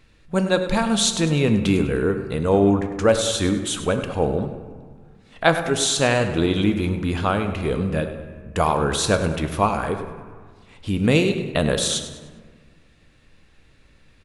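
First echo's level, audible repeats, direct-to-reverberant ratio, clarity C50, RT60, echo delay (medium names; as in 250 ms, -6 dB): -12.5 dB, 3, 6.5 dB, 8.0 dB, 1.6 s, 101 ms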